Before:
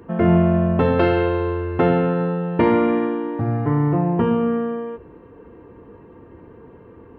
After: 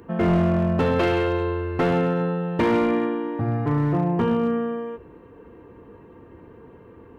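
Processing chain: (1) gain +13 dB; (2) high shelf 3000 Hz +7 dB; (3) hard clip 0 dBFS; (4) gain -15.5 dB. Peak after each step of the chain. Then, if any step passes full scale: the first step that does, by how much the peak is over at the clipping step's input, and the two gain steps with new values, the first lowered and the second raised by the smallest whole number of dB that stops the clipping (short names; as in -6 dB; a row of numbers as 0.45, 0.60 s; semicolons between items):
+9.5, +10.0, 0.0, -15.5 dBFS; step 1, 10.0 dB; step 1 +3 dB, step 4 -5.5 dB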